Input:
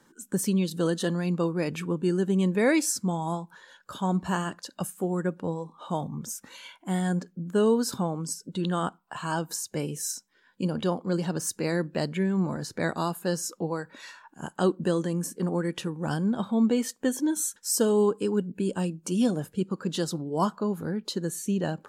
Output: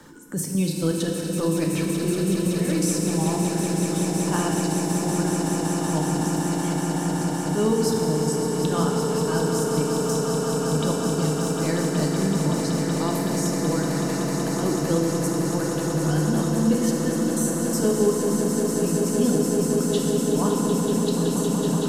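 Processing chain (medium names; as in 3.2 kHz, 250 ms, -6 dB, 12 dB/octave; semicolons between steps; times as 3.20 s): bass shelf 190 Hz +8 dB; transient shaper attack -11 dB, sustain +2 dB; trance gate "xx.xx.xx.x.x...x" 165 bpm -12 dB; echo with a slow build-up 188 ms, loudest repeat 8, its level -9.5 dB; FDN reverb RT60 2.8 s, low-frequency decay 1.25×, high-frequency decay 0.85×, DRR 0.5 dB; three bands compressed up and down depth 40%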